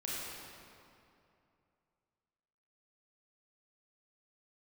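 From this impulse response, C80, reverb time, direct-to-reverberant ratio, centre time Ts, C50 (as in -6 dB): -2.0 dB, 2.6 s, -7.0 dB, 166 ms, -4.0 dB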